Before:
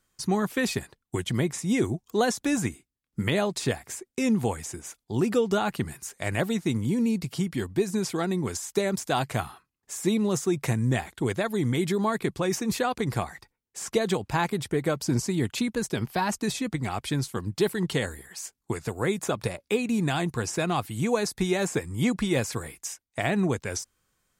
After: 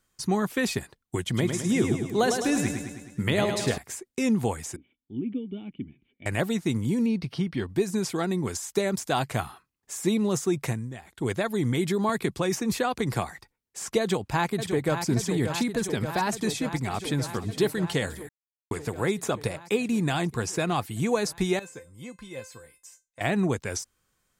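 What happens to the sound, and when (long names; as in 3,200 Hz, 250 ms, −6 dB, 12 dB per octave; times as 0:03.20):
0:01.26–0:03.78: repeating echo 105 ms, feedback 58%, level −6 dB
0:04.76–0:06.26: formant resonators in series i
0:07.06–0:07.69: Savitzky-Golay smoothing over 15 samples
0:10.61–0:11.31: duck −14.5 dB, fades 0.29 s
0:12.09–0:13.31: multiband upward and downward compressor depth 40%
0:14.00–0:15.05: delay throw 580 ms, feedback 80%, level −7.5 dB
0:16.48–0:17.31: delay throw 460 ms, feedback 40%, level −15 dB
0:18.29–0:18.71: silence
0:21.59–0:23.21: tuned comb filter 520 Hz, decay 0.21 s, mix 90%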